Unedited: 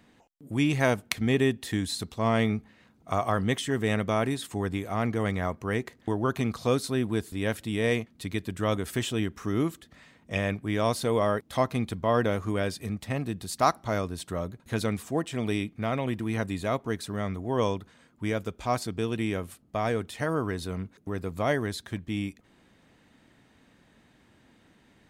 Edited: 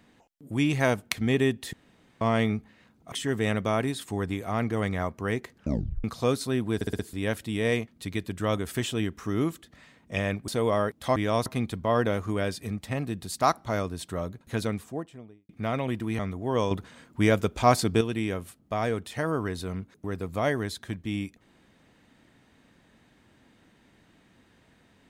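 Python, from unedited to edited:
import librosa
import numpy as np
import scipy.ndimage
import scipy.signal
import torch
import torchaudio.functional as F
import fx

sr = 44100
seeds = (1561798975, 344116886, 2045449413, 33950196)

y = fx.studio_fade_out(x, sr, start_s=14.68, length_s=1.0)
y = fx.edit(y, sr, fx.room_tone_fill(start_s=1.73, length_s=0.48),
    fx.cut(start_s=3.12, length_s=0.43),
    fx.tape_stop(start_s=5.96, length_s=0.51),
    fx.stutter(start_s=7.18, slice_s=0.06, count=5),
    fx.move(start_s=10.67, length_s=0.3, to_s=11.65),
    fx.cut(start_s=16.38, length_s=0.84),
    fx.clip_gain(start_s=17.74, length_s=1.3, db=7.5), tone=tone)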